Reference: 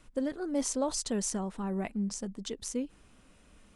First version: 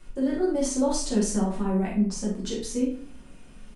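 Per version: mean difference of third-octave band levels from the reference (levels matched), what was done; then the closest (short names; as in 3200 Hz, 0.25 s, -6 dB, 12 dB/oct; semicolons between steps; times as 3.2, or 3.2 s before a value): 5.5 dB: limiter -25.5 dBFS, peak gain reduction 10 dB; doubler 43 ms -6 dB; shoebox room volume 36 m³, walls mixed, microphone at 0.99 m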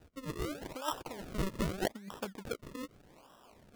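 12.5 dB: negative-ratio compressor -34 dBFS, ratio -0.5; band-pass 1000 Hz, Q 2.3; decimation with a swept rate 39×, swing 100% 0.82 Hz; gain +11 dB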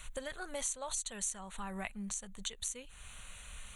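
9.0 dB: passive tone stack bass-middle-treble 10-0-10; compressor 3:1, threshold -57 dBFS, peak gain reduction 19 dB; Butterworth band-stop 5100 Hz, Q 2.9; gain +17 dB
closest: first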